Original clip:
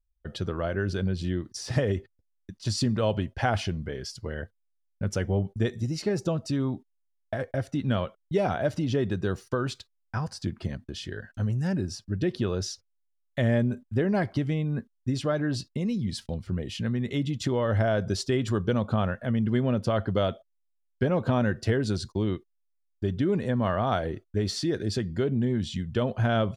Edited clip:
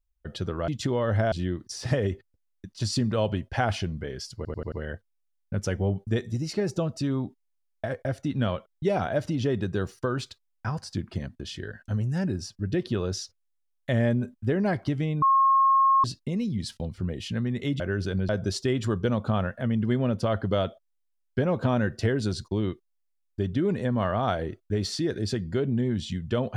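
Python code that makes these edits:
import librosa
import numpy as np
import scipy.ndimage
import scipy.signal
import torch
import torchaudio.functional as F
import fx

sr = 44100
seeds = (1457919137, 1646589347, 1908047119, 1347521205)

y = fx.edit(x, sr, fx.swap(start_s=0.68, length_s=0.49, other_s=17.29, other_length_s=0.64),
    fx.stutter(start_s=4.21, slice_s=0.09, count=5),
    fx.bleep(start_s=14.71, length_s=0.82, hz=1080.0, db=-16.5), tone=tone)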